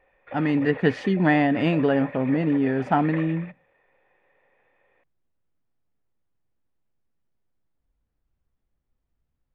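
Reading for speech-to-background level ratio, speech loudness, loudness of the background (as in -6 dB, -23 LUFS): 16.5 dB, -22.5 LUFS, -39.0 LUFS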